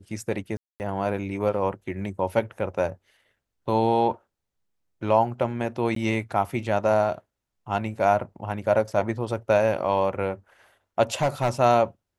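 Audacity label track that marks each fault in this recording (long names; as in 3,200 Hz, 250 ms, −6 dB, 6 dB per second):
0.570000	0.800000	drop-out 229 ms
5.950000	5.960000	drop-out 13 ms
11.140000	11.500000	clipping −17 dBFS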